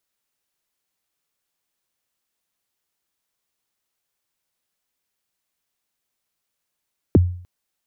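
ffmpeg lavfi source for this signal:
-f lavfi -i "aevalsrc='0.473*pow(10,-3*t/0.51)*sin(2*PI*(460*0.023/log(89/460)*(exp(log(89/460)*min(t,0.023)/0.023)-1)+89*max(t-0.023,0)))':d=0.3:s=44100"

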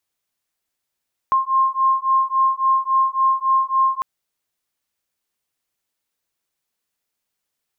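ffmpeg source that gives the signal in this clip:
-f lavfi -i "aevalsrc='0.126*(sin(2*PI*1060*t)+sin(2*PI*1063.6*t))':d=2.7:s=44100"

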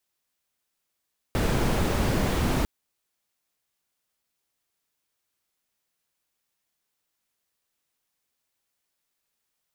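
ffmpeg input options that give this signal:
-f lavfi -i "anoisesrc=c=brown:a=0.313:d=1.3:r=44100:seed=1"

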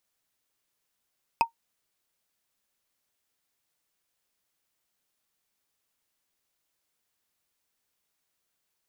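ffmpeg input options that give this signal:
-f lavfi -i "aevalsrc='0.211*pow(10,-3*t/0.11)*sin(2*PI*921*t)+0.112*pow(10,-3*t/0.033)*sin(2*PI*2539.2*t)+0.0596*pow(10,-3*t/0.015)*sin(2*PI*4977.1*t)+0.0316*pow(10,-3*t/0.008)*sin(2*PI*8227.3*t)+0.0168*pow(10,-3*t/0.005)*sin(2*PI*12286.1*t)':d=0.45:s=44100"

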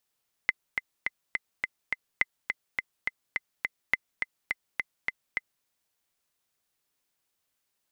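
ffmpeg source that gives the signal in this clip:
-f lavfi -i "aevalsrc='pow(10,(-9-5.5*gte(mod(t,6*60/209),60/209))/20)*sin(2*PI*2050*mod(t,60/209))*exp(-6.91*mod(t,60/209)/0.03)':d=5.16:s=44100"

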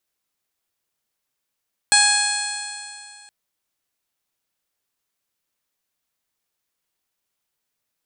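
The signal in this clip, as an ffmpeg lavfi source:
-f lavfi -i "aevalsrc='0.0944*pow(10,-3*t/2.4)*sin(2*PI*825.91*t)+0.133*pow(10,-3*t/2.4)*sin(2*PI*1657.24*t)+0.075*pow(10,-3*t/2.4)*sin(2*PI*2499.38*t)+0.0562*pow(10,-3*t/2.4)*sin(2*PI*3357.58*t)+0.15*pow(10,-3*t/2.4)*sin(2*PI*4236.92*t)+0.0335*pow(10,-3*t/2.4)*sin(2*PI*5142.29*t)+0.0376*pow(10,-3*t/2.4)*sin(2*PI*6078.31*t)+0.0668*pow(10,-3*t/2.4)*sin(2*PI*7049.34*t)+0.168*pow(10,-3*t/2.4)*sin(2*PI*8059.46*t)+0.075*pow(10,-3*t/2.4)*sin(2*PI*9112.42*t)':d=1.37:s=44100"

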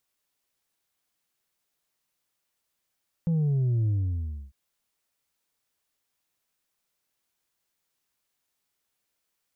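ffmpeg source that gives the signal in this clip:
-f lavfi -i "aevalsrc='0.0794*clip((1.25-t)/0.64,0,1)*tanh(1.41*sin(2*PI*170*1.25/log(65/170)*(exp(log(65/170)*t/1.25)-1)))/tanh(1.41)':d=1.25:s=44100"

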